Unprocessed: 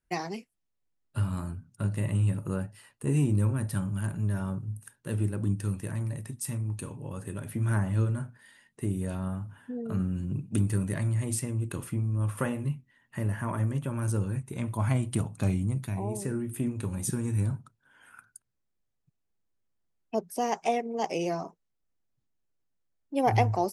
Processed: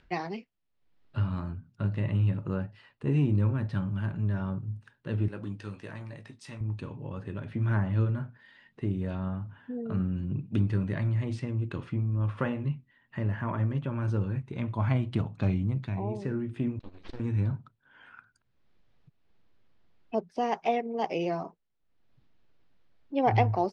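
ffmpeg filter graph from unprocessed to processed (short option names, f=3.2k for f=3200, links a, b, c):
-filter_complex "[0:a]asettb=1/sr,asplit=3[a][b][c];[a]atrim=end=5.284[d];[b]atrim=start=5.28:end=6.61,asetpts=PTS-STARTPTS,afade=t=in:d=0.004:c=qsin,afade=t=out:st=1.326:d=0.004:c=qsin,highpass=f=470:p=1,highshelf=f=7k:g=10,asplit=2[e][f];[f]adelay=19,volume=-9dB[g];[e][g]amix=inputs=2:normalize=0,atrim=end_sample=58653[h];[c]atrim=start=6.606[i];[d][h]acrossfade=d=0.004:c1=hsin:c2=qsin[j];[j][i]acrossfade=d=0.004:c1=qsin:c2=hsin,asettb=1/sr,asplit=3[k][l][m];[k]atrim=end=16.794[n];[l]atrim=start=16.79:end=17.2,asetpts=PTS-STARTPTS,afade=t=in:d=0.004:c=qsin,afade=t=out:st=0.406:d=0.004:c=qsin,agate=range=-33dB:threshold=-23dB:ratio=3:release=100:detection=peak,equalizer=f=4.1k:t=o:w=0.99:g=14.5,aeval=exprs='abs(val(0))':c=same[o];[m]atrim=start=17.196[p];[n][o]acrossfade=d=0.004:c1=hsin:c2=qsin[q];[q][p]acrossfade=d=0.004:c1=qsin:c2=hsin,lowpass=f=4.2k:w=0.5412,lowpass=f=4.2k:w=1.3066,acompressor=mode=upward:threshold=-48dB:ratio=2.5"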